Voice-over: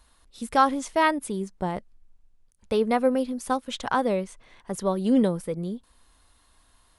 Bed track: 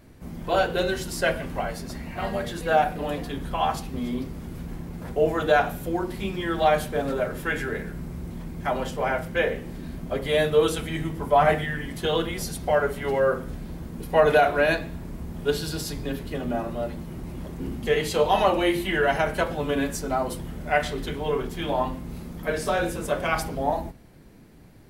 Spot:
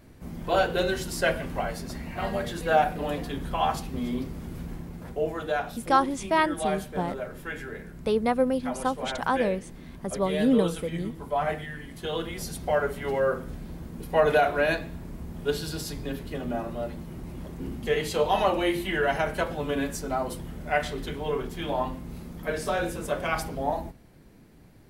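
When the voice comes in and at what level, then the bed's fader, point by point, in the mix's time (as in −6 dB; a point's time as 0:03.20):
5.35 s, −1.5 dB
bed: 0:04.64 −1 dB
0:05.48 −8.5 dB
0:11.90 −8.5 dB
0:12.55 −3 dB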